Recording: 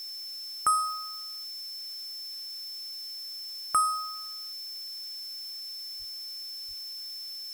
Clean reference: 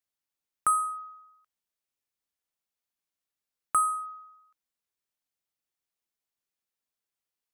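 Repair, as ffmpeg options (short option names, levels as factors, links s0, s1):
-filter_complex "[0:a]bandreject=f=5300:w=30,asplit=3[s0][s1][s2];[s0]afade=t=out:st=5.98:d=0.02[s3];[s1]highpass=f=140:w=0.5412,highpass=f=140:w=1.3066,afade=t=in:st=5.98:d=0.02,afade=t=out:st=6.1:d=0.02[s4];[s2]afade=t=in:st=6.1:d=0.02[s5];[s3][s4][s5]amix=inputs=3:normalize=0,asplit=3[s6][s7][s8];[s6]afade=t=out:st=6.67:d=0.02[s9];[s7]highpass=f=140:w=0.5412,highpass=f=140:w=1.3066,afade=t=in:st=6.67:d=0.02,afade=t=out:st=6.79:d=0.02[s10];[s8]afade=t=in:st=6.79:d=0.02[s11];[s9][s10][s11]amix=inputs=3:normalize=0,afftdn=nr=30:nf=-40"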